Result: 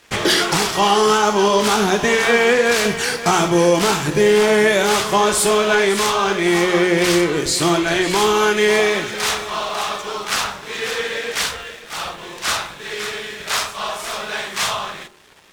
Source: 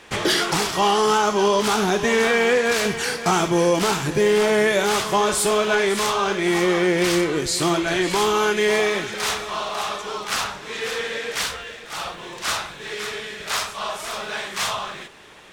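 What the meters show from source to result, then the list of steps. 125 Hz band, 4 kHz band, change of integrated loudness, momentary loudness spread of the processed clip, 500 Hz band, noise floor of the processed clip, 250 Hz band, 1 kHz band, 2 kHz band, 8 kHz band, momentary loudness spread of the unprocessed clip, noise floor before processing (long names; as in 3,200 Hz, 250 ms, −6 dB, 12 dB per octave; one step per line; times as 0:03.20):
+3.5 dB, +4.0 dB, +4.0 dB, 11 LU, +3.5 dB, −37 dBFS, +3.5 dB, +3.5 dB, +4.0 dB, +4.0 dB, 11 LU, −39 dBFS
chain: dead-zone distortion −46.5 dBFS
hum removal 45.22 Hz, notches 32
level +4.5 dB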